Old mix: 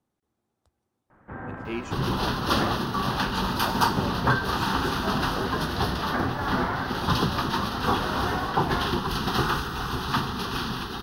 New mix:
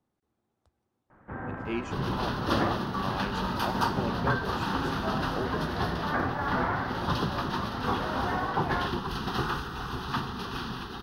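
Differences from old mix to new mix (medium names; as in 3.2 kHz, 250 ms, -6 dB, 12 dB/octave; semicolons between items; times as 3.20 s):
second sound -5.0 dB; master: add treble shelf 5.8 kHz -7.5 dB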